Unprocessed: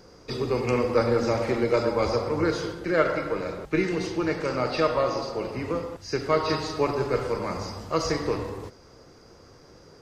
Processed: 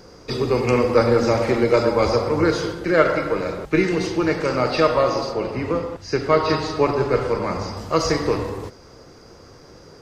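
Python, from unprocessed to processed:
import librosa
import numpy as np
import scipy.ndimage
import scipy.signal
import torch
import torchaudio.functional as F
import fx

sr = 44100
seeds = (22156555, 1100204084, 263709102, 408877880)

y = fx.high_shelf(x, sr, hz=7200.0, db=-10.0, at=(5.33, 7.77))
y = y * 10.0 ** (6.0 / 20.0)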